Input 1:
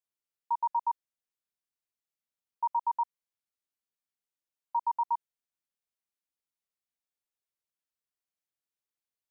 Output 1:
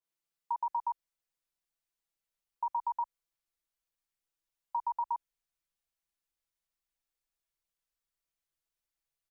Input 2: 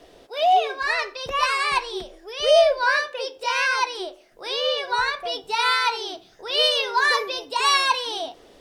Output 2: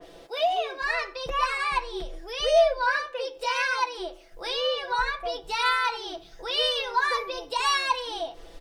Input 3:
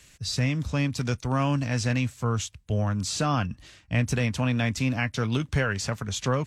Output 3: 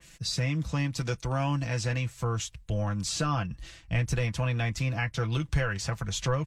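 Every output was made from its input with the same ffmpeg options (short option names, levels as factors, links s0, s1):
-filter_complex "[0:a]asubboost=boost=6:cutoff=77,aecho=1:1:6:0.64,asplit=2[s0][s1];[s1]acompressor=threshold=0.0282:ratio=6,volume=1.41[s2];[s0][s2]amix=inputs=2:normalize=0,adynamicequalizer=threshold=0.0251:dfrequency=2500:dqfactor=0.7:tfrequency=2500:tqfactor=0.7:attack=5:release=100:ratio=0.375:range=3.5:mode=cutabove:tftype=highshelf,volume=0.422"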